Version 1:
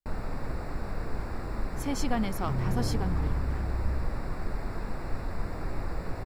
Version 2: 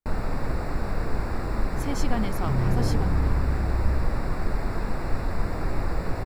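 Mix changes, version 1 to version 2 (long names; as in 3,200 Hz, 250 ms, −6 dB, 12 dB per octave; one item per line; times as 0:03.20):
first sound +6.5 dB
second sound +5.5 dB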